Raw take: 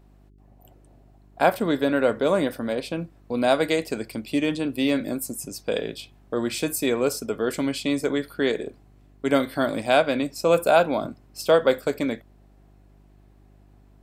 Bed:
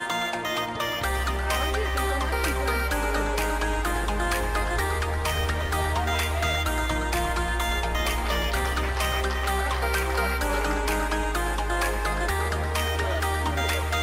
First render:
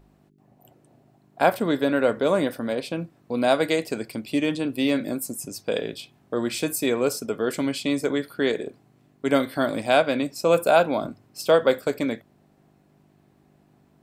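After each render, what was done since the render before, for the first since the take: de-hum 50 Hz, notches 2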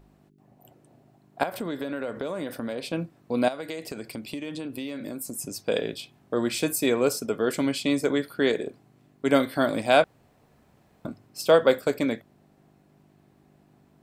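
1.43–2.93 compressor 8:1, threshold -27 dBFS; 3.48–5.38 compressor 10:1, threshold -30 dBFS; 10.04–11.05 room tone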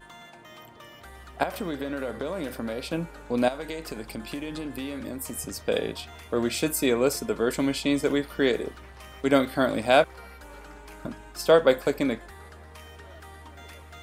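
add bed -20 dB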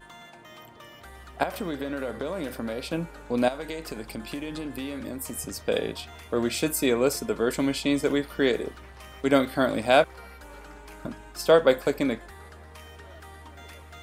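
nothing audible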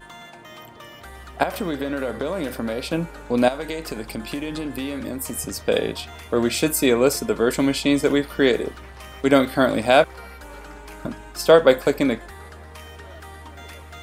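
gain +5.5 dB; limiter -2 dBFS, peak gain reduction 2.5 dB

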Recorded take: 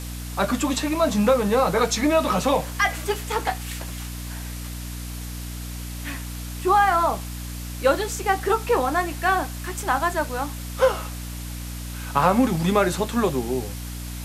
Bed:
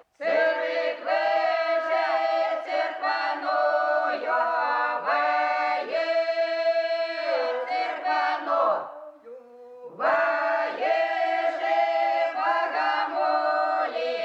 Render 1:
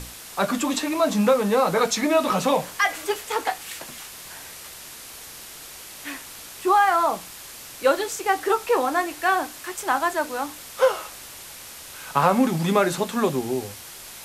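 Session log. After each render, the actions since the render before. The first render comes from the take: notches 60/120/180/240/300 Hz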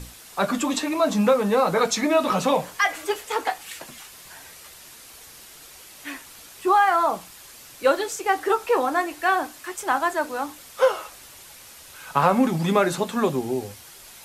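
denoiser 6 dB, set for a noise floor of -41 dBFS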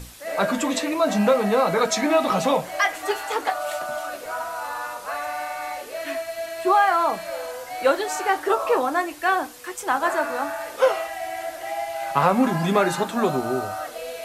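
add bed -6 dB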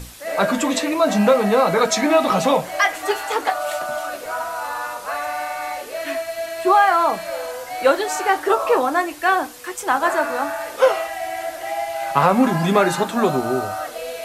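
gain +3.5 dB; limiter -2 dBFS, peak gain reduction 1 dB

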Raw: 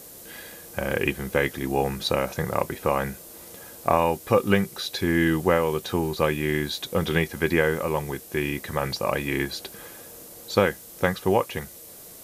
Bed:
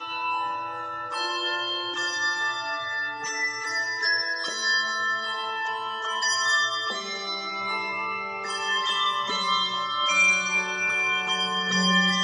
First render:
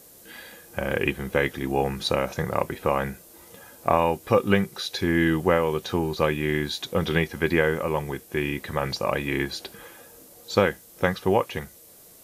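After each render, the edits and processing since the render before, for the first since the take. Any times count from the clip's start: noise print and reduce 6 dB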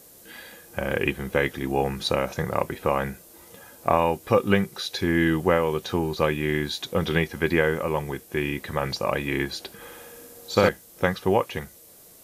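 9.75–10.69 flutter echo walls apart 10.5 m, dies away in 1.1 s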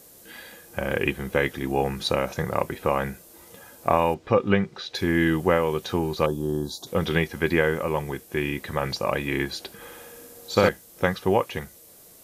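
4.14–4.95 air absorption 150 m; 6.26–6.87 Chebyshev band-stop 890–5100 Hz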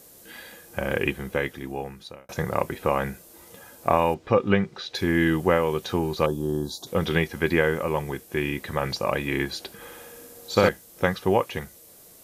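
0.97–2.29 fade out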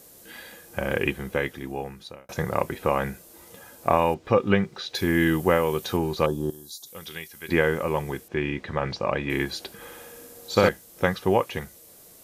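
4.25–5.97 high shelf 10000 Hz +10.5 dB; 6.5–7.49 pre-emphasis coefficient 0.9; 8.28–9.3 air absorption 130 m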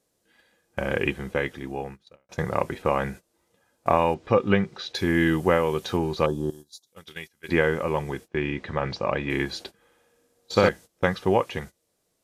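gate -38 dBFS, range -19 dB; Bessel low-pass 7300 Hz, order 2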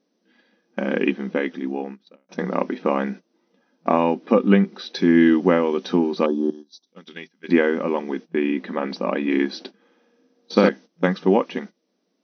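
FFT band-pass 170–6200 Hz; bell 250 Hz +12 dB 0.96 oct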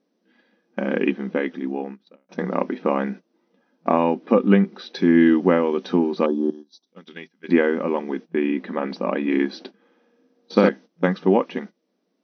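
high shelf 4500 Hz -9 dB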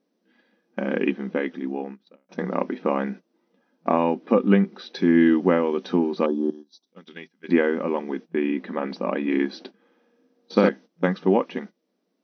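gain -2 dB

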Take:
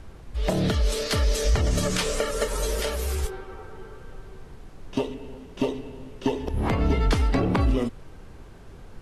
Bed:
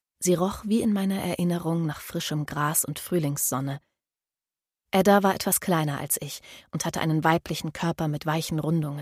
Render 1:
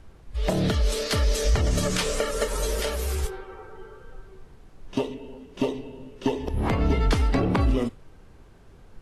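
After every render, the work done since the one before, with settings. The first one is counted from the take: noise print and reduce 6 dB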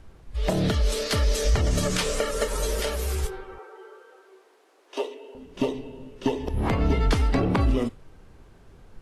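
3.58–5.35 steep high-pass 350 Hz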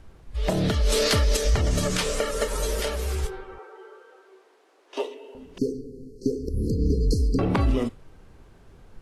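0.85–1.37 fast leveller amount 70%; 2.88–5 high shelf 11000 Hz -9 dB; 5.58–7.39 brick-wall FIR band-stop 520–4100 Hz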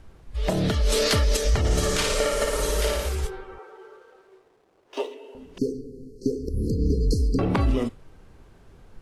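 1.59–3.09 flutter echo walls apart 9.8 m, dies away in 1 s; 3.66–5.13 backlash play -54.5 dBFS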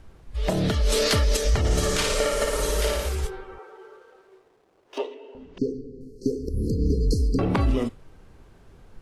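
4.98–6.01 air absorption 120 m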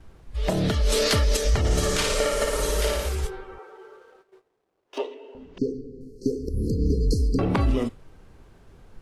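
gate -53 dBFS, range -12 dB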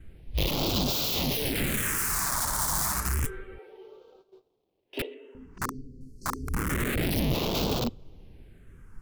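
wrapped overs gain 21 dB; phaser stages 4, 0.29 Hz, lowest notch 440–1800 Hz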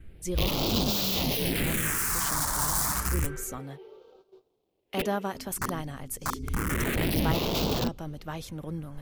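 add bed -11 dB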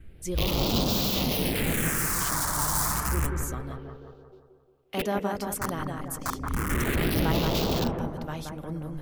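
analogue delay 0.176 s, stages 2048, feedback 50%, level -4 dB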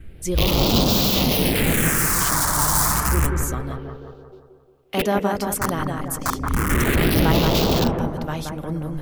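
gain +7.5 dB

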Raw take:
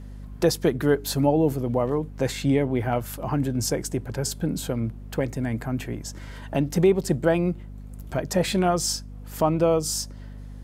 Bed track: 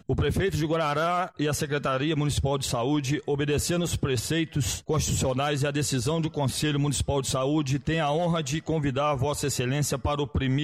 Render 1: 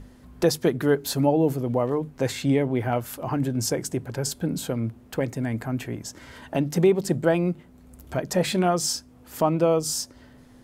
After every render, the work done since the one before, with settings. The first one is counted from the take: notches 50/100/150/200 Hz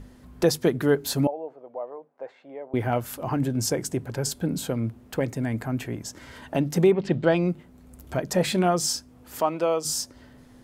1.27–2.74 ladder band-pass 760 Hz, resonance 40%; 6.91–7.47 synth low-pass 2000 Hz -> 6400 Hz, resonance Q 2.2; 9.4–9.85 weighting filter A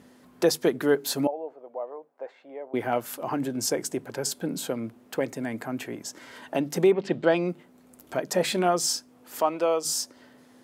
HPF 260 Hz 12 dB/oct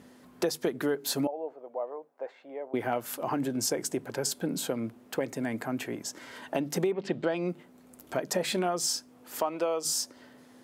compressor 6:1, threshold -25 dBFS, peak gain reduction 9.5 dB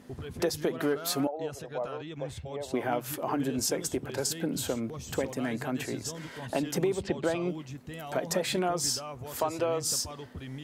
add bed track -15.5 dB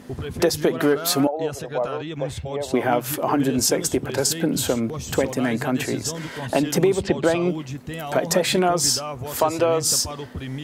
gain +9.5 dB

